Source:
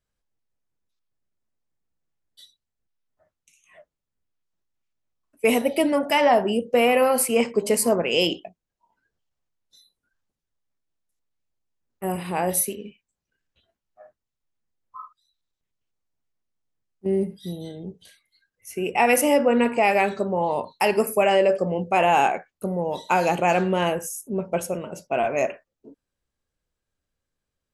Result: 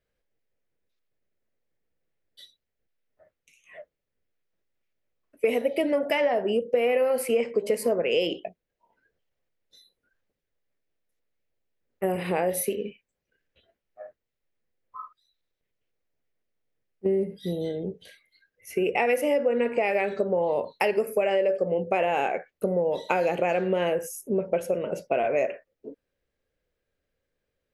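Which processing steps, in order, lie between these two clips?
octave-band graphic EQ 500/1,000/2,000/8,000 Hz +11/−5/+7/−7 dB
downward compressor 5 to 1, threshold −22 dBFS, peak gain reduction 15 dB

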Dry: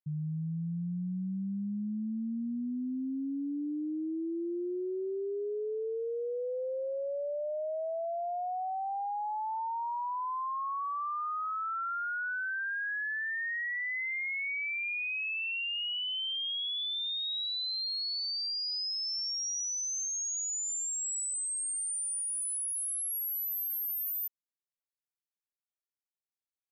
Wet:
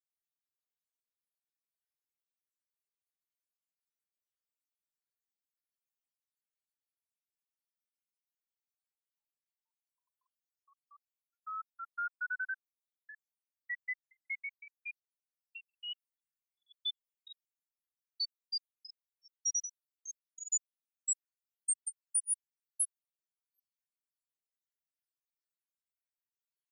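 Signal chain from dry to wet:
time-frequency cells dropped at random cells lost 85%
Butterworth high-pass 1,300 Hz 96 dB per octave
high-shelf EQ 5,900 Hz +10 dB
barber-pole flanger 2.7 ms +0.46 Hz

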